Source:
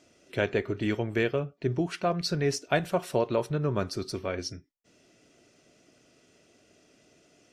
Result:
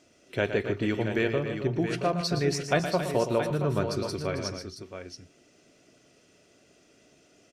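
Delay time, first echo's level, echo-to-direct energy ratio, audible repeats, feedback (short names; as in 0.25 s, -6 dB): 0.116 s, -9.5 dB, -4.5 dB, 4, no steady repeat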